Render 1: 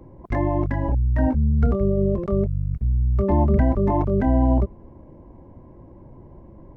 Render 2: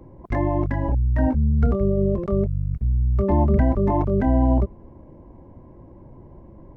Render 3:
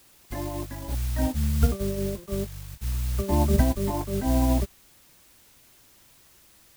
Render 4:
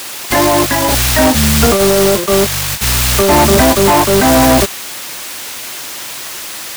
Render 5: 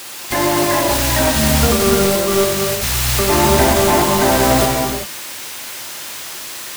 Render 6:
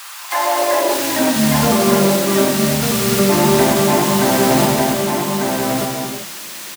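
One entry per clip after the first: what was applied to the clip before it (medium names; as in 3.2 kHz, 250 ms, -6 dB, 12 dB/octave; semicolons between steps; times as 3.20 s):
no audible change
added noise white -34 dBFS; upward expansion 2.5:1, over -29 dBFS
overdrive pedal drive 34 dB, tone 7.9 kHz, clips at -7.5 dBFS; trim +6.5 dB
gated-style reverb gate 420 ms flat, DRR -0.5 dB; trim -7 dB
high-pass sweep 1.1 kHz -> 170 Hz, 0.18–1.54 s; on a send: delay 1196 ms -4 dB; on the sum: trim -3 dB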